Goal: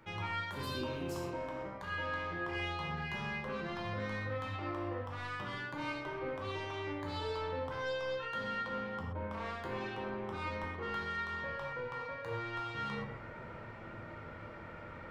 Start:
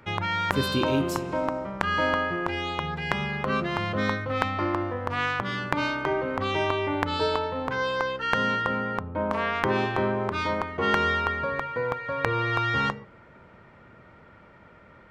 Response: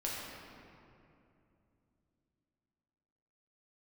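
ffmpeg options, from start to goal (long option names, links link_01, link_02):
-filter_complex "[0:a]areverse,acompressor=threshold=-39dB:ratio=6,areverse,asoftclip=type=tanh:threshold=-35dB[link_01];[1:a]atrim=start_sample=2205,atrim=end_sample=6174[link_02];[link_01][link_02]afir=irnorm=-1:irlink=0,volume=2.5dB"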